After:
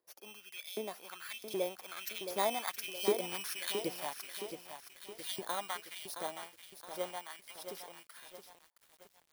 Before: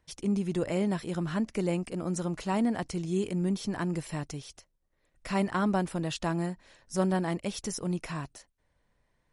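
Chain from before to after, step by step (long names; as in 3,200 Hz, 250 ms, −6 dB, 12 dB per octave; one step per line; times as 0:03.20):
samples in bit-reversed order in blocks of 16 samples
source passing by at 0:03.25, 16 m/s, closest 15 metres
auto-filter high-pass saw up 1.3 Hz 370–4,200 Hz
dynamic equaliser 420 Hz, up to −3 dB, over −49 dBFS, Q 0.78
feedback echo at a low word length 669 ms, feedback 55%, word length 9 bits, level −8 dB
level +1 dB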